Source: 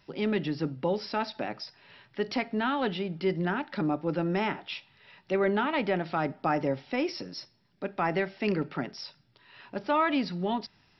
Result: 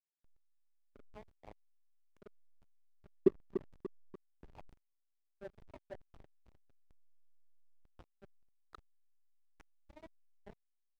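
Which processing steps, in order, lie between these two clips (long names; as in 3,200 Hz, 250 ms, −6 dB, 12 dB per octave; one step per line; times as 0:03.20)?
hearing-aid frequency compression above 1,300 Hz 1.5 to 1
treble cut that deepens with the level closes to 500 Hz, closed at −24.5 dBFS
high-shelf EQ 2,100 Hz +10.5 dB
transient designer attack 0 dB, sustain −4 dB
output level in coarse steps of 24 dB
hum removal 313.7 Hz, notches 2
hollow resonant body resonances 420/610 Hz, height 10 dB, ringing for 35 ms
envelope filter 270–2,900 Hz, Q 2.8, down, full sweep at −34 dBFS
on a send: repeating echo 292 ms, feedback 53%, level −9.5 dB
on the sum: slack as between gear wheels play −40 dBFS
level +5.5 dB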